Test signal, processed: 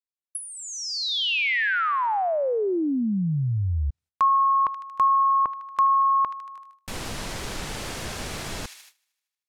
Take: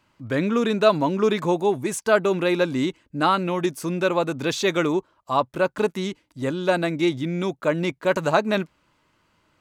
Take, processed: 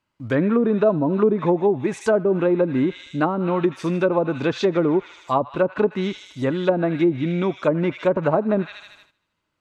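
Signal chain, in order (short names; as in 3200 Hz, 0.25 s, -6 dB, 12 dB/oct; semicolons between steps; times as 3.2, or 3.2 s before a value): on a send: thin delay 77 ms, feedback 65%, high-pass 2100 Hz, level -7 dB; on the sum: treble ducked by the level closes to 550 Hz, closed at -16 dBFS; gate -54 dBFS, range -16 dB; gain +3.5 dB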